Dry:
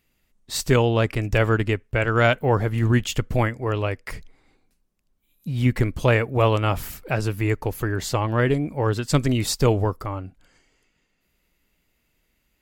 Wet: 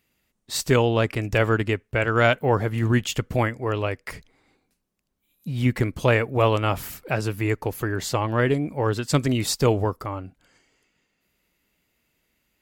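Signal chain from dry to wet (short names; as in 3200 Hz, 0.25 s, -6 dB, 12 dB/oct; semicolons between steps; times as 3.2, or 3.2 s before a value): HPF 100 Hz 6 dB/oct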